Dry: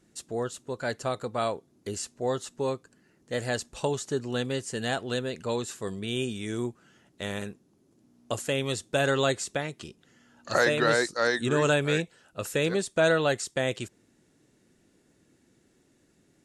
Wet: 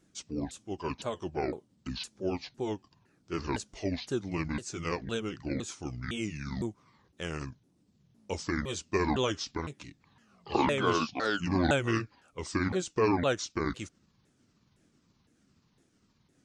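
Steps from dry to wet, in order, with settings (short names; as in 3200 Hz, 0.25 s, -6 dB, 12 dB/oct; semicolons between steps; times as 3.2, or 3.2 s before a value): repeated pitch sweeps -11 st, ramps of 0.509 s; gain -2.5 dB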